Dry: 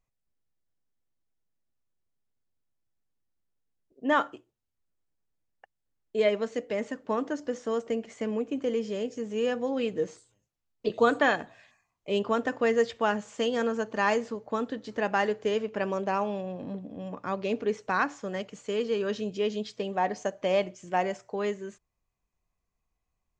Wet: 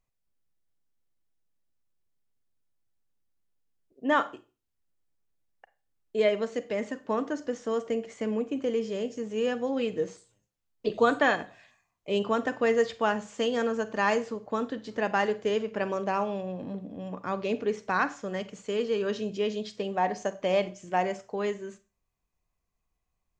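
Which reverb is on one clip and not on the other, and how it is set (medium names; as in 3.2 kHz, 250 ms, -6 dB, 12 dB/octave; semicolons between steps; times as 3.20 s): Schroeder reverb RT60 0.32 s, combs from 33 ms, DRR 14 dB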